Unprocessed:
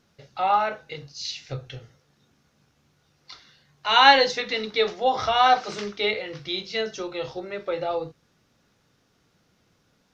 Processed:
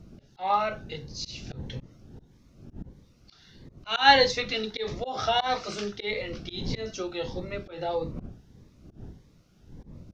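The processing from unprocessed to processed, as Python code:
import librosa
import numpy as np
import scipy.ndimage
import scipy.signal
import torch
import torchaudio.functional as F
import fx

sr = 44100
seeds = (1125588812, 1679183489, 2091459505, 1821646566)

y = fx.dmg_wind(x, sr, seeds[0], corner_hz=190.0, level_db=-40.0)
y = fx.auto_swell(y, sr, attack_ms=150.0)
y = fx.notch_cascade(y, sr, direction='rising', hz=1.6)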